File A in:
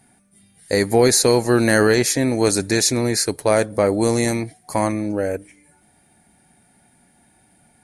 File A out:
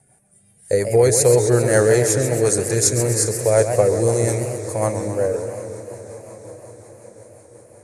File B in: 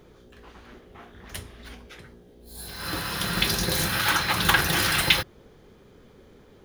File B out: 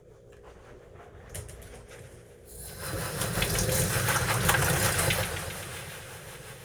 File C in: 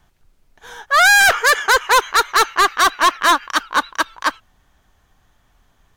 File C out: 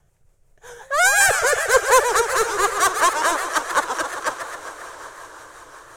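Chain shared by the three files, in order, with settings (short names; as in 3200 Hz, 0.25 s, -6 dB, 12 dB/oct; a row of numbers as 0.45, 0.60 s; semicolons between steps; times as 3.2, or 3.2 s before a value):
graphic EQ 125/250/500/4000/8000 Hz +10/-11/+10/-8/+10 dB; on a send: diffused feedback echo 0.718 s, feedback 58%, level -15.5 dB; on the sum: rotary speaker horn 5.5 Hz; warbling echo 0.133 s, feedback 68%, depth 213 cents, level -8.5 dB; gain -3 dB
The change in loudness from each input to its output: +0.5, -4.5, -4.0 LU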